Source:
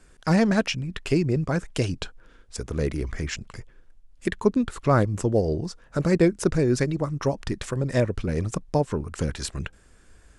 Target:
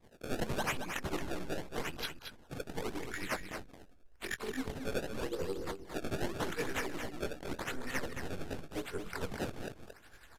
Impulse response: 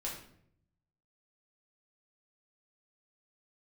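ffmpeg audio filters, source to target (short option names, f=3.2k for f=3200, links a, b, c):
-filter_complex "[0:a]afftfilt=real='re':imag='-im':win_size=2048:overlap=0.75,firequalizer=gain_entry='entry(490,0);entry(790,-21);entry(1400,12)':delay=0.05:min_phase=1,acrossover=split=230[a][b];[a]aeval=exprs='abs(val(0))':c=same[c];[c][b]amix=inputs=2:normalize=0,acrusher=samples=25:mix=1:aa=0.000001:lfo=1:lforange=40:lforate=0.86,asoftclip=type=tanh:threshold=-26.5dB,tremolo=f=11:d=0.77,aecho=1:1:224:0.422,aresample=32000,aresample=44100,adynamicequalizer=threshold=0.00158:dfrequency=6200:dqfactor=0.7:tfrequency=6200:tqfactor=0.7:attack=5:release=100:ratio=0.375:range=1.5:mode=cutabove:tftype=highshelf,volume=-2dB"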